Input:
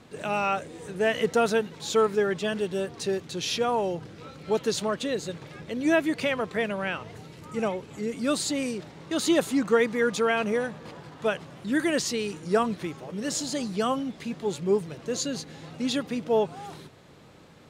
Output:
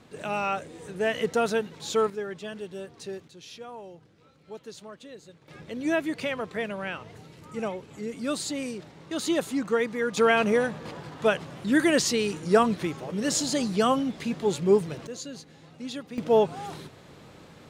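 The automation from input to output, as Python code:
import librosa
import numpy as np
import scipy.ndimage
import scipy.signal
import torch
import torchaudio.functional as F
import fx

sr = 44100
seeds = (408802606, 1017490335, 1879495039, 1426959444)

y = fx.gain(x, sr, db=fx.steps((0.0, -2.0), (2.1, -9.0), (3.28, -16.0), (5.48, -3.5), (10.17, 3.5), (15.07, -8.5), (16.18, 3.0)))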